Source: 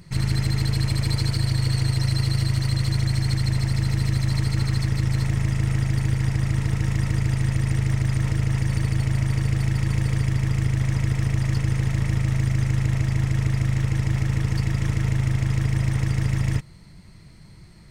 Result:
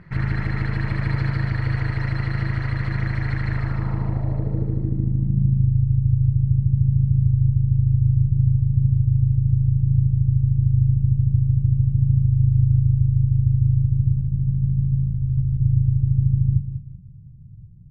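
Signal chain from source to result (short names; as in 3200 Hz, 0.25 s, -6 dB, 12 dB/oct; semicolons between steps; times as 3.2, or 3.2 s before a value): 14.14–15.62 negative-ratio compressor -24 dBFS, ratio -0.5; low-pass sweep 1700 Hz -> 120 Hz, 3.53–5.7; feedback echo 0.193 s, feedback 33%, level -9.5 dB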